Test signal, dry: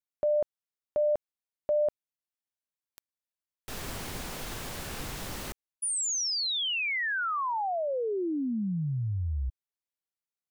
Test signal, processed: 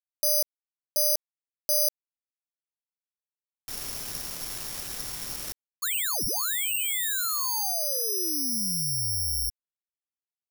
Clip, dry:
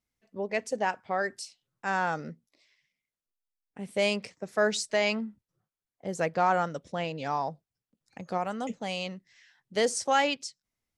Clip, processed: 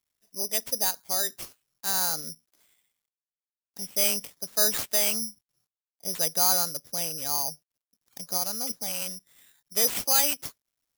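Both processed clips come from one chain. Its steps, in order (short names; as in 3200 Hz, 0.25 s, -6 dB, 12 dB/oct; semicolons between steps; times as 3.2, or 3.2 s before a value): companded quantiser 8-bit; careless resampling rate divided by 8×, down none, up zero stuff; gain -7 dB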